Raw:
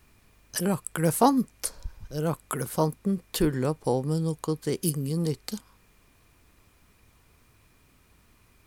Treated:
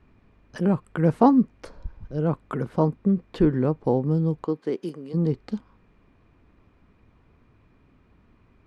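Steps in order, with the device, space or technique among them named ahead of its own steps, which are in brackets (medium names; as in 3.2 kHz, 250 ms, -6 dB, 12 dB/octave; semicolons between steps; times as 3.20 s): 4.44–5.13 s: high-pass 220 Hz -> 550 Hz 12 dB/octave; phone in a pocket (low-pass 3.4 kHz 12 dB/octave; peaking EQ 240 Hz +4.5 dB 1.4 oct; treble shelf 2.2 kHz -11 dB); trim +2 dB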